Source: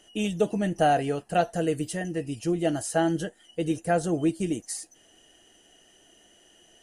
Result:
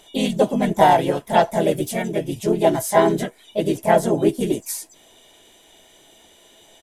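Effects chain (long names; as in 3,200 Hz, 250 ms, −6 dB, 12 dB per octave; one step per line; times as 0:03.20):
pitch-shifted copies added −4 semitones −11 dB, +3 semitones −4 dB, +4 semitones −2 dB
hollow resonant body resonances 650/1,000/3,300 Hz, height 9 dB, ringing for 85 ms
level +3 dB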